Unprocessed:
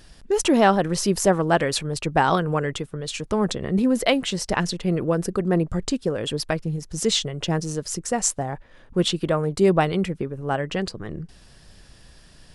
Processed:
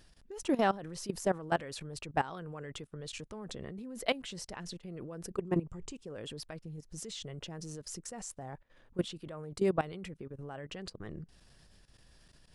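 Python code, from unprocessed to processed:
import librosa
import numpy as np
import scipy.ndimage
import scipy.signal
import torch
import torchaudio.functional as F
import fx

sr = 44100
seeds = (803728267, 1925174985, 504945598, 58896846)

y = fx.ripple_eq(x, sr, per_octave=0.72, db=8, at=(5.35, 6.06))
y = fx.level_steps(y, sr, step_db=17)
y = y * librosa.db_to_amplitude(-9.0)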